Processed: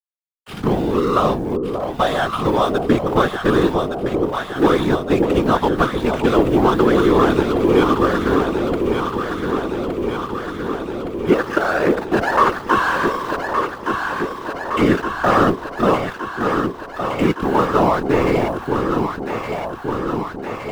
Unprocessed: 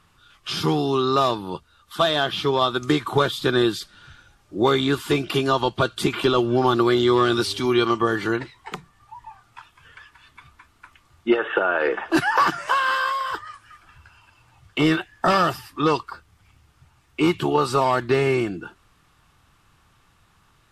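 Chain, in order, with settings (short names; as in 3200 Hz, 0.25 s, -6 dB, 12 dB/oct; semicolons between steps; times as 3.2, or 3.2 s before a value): LPF 2600 Hz 12 dB/oct; backlash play -25.5 dBFS; requantised 8-bit, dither none; whisperiser; echo with dull and thin repeats by turns 0.583 s, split 830 Hz, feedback 84%, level -4 dB; gain +3.5 dB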